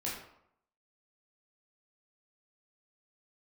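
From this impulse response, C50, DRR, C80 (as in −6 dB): 3.0 dB, −6.0 dB, 6.5 dB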